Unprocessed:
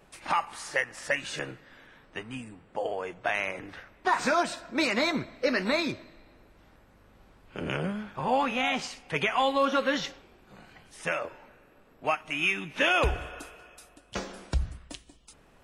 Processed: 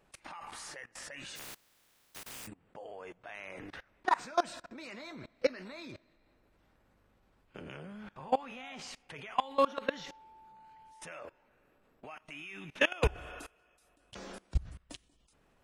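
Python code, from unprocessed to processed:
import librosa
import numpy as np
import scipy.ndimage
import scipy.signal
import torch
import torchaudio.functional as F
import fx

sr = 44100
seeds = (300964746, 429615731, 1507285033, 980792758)

y = fx.spec_flatten(x, sr, power=0.12, at=(1.35, 2.46), fade=0.02)
y = fx.level_steps(y, sr, step_db=23)
y = fx.dmg_tone(y, sr, hz=880.0, level_db=-54.0, at=(9.37, 11.06), fade=0.02)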